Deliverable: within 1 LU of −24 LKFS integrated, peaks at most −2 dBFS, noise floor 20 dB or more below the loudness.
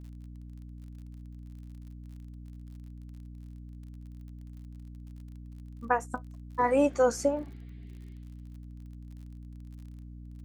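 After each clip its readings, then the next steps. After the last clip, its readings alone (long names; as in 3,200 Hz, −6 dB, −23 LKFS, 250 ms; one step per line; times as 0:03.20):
crackle rate 41 per second; mains hum 60 Hz; hum harmonics up to 300 Hz; level of the hum −42 dBFS; integrated loudness −29.0 LKFS; sample peak −10.5 dBFS; target loudness −24.0 LKFS
→ click removal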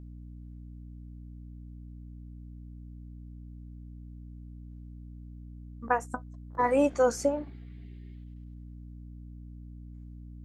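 crackle rate 0.096 per second; mains hum 60 Hz; hum harmonics up to 300 Hz; level of the hum −42 dBFS
→ hum removal 60 Hz, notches 5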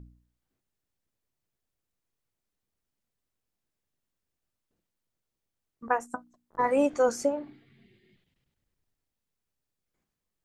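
mains hum none found; integrated loudness −28.0 LKFS; sample peak −11.0 dBFS; target loudness −24.0 LKFS
→ level +4 dB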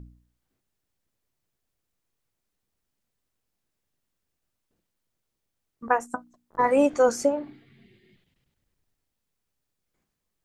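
integrated loudness −24.0 LKFS; sample peak −7.0 dBFS; background noise floor −82 dBFS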